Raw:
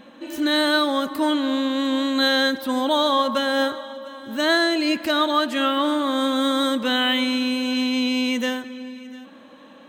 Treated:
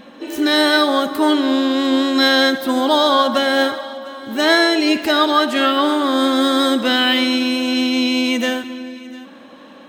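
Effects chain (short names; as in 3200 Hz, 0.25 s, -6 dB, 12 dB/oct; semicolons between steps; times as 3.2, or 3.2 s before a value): Schroeder reverb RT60 0.91 s, DRR 13.5 dB; harmoniser +5 st -14 dB; gain +5 dB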